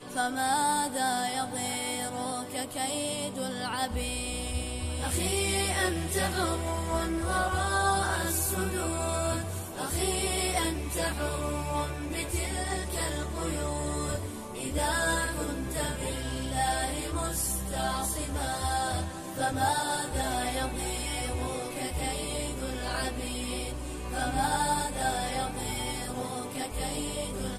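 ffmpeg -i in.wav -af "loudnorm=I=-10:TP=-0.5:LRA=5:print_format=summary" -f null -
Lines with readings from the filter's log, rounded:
Input Integrated:    -30.6 LUFS
Input True Peak:     -13.6 dBTP
Input LRA:             3.5 LU
Input Threshold:     -40.6 LUFS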